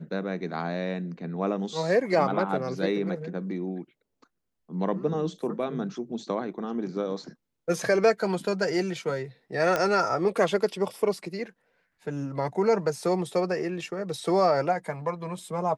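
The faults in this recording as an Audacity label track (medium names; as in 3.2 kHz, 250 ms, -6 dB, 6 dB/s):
9.760000	9.760000	pop -12 dBFS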